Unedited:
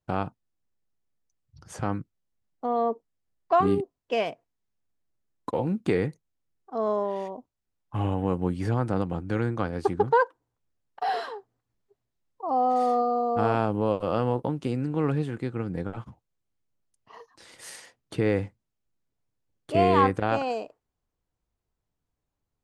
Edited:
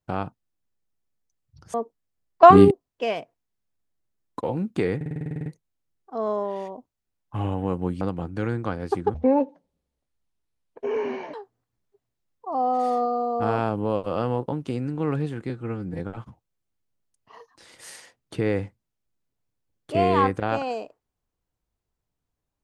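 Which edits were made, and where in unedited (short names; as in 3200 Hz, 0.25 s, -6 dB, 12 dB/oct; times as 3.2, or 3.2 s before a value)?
1.74–2.84 cut
3.53–3.81 gain +11 dB
6.06 stutter 0.05 s, 11 plays
8.61–8.94 cut
10.07–11.3 speed 56%
15.46–15.79 stretch 1.5×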